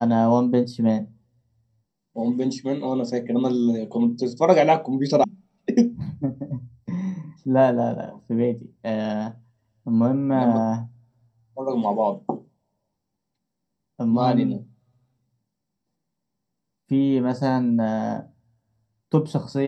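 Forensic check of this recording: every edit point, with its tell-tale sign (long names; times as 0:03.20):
0:05.24: cut off before it has died away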